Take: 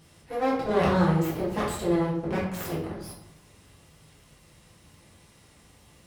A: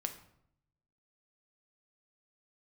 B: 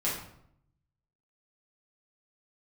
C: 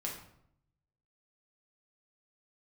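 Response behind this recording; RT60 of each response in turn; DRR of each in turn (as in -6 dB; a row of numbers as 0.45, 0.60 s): B; 0.70, 0.70, 0.70 s; 6.0, -8.0, -2.5 dB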